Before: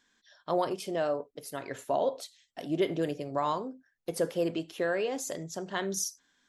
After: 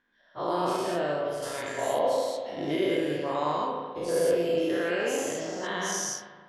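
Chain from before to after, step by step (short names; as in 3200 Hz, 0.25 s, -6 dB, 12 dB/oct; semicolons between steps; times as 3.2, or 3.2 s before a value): spectral dilation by 0.24 s; 1.42–1.99 high shelf 3100 Hz +9.5 dB; spring tank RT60 1.6 s, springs 34/40 ms, chirp 70 ms, DRR 1 dB; low-pass opened by the level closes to 2000 Hz, open at -18 dBFS; gain -6 dB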